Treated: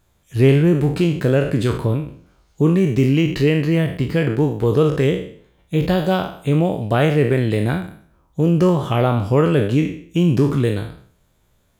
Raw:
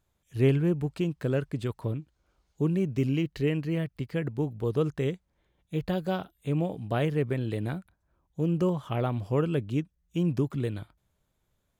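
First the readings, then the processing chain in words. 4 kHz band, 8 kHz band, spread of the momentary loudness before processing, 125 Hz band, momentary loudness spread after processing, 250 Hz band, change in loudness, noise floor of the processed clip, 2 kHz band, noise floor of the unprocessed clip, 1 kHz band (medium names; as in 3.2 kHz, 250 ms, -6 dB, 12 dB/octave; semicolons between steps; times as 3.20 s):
+13.5 dB, no reading, 8 LU, +11.5 dB, 8 LU, +11.5 dB, +11.5 dB, -61 dBFS, +13.5 dB, -76 dBFS, +12.5 dB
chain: spectral sustain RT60 0.53 s; in parallel at -2.5 dB: peak limiter -22 dBFS, peak gain reduction 9 dB; on the sum: trim +7 dB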